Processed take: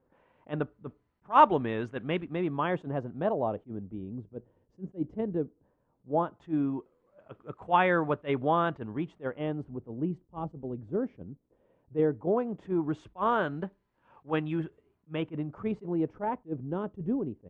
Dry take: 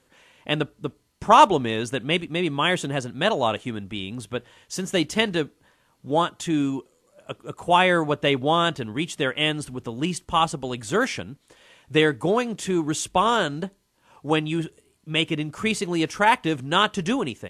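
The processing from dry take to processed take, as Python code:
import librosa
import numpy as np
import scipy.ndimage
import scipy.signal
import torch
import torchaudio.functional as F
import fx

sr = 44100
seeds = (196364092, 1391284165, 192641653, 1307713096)

y = fx.filter_lfo_lowpass(x, sr, shape='sine', hz=0.16, low_hz=400.0, high_hz=1700.0, q=0.91)
y = fx.attack_slew(y, sr, db_per_s=370.0)
y = y * 10.0 ** (-5.5 / 20.0)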